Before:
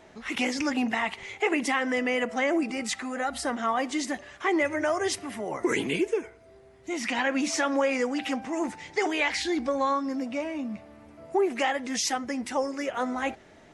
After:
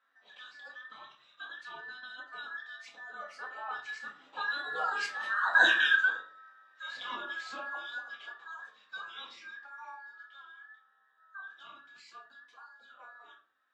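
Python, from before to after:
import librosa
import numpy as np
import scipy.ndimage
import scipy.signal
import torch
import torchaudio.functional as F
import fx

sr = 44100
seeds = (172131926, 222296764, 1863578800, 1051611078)

y = fx.band_invert(x, sr, width_hz=2000)
y = fx.doppler_pass(y, sr, speed_mps=6, closest_m=1.7, pass_at_s=5.61)
y = scipy.signal.sosfilt(scipy.signal.butter(2, 600.0, 'highpass', fs=sr, output='sos'), y)
y = fx.air_absorb(y, sr, metres=160.0)
y = fx.room_shoebox(y, sr, seeds[0], volume_m3=310.0, walls='furnished', distance_m=2.0)
y = y * librosa.db_to_amplitude(3.0)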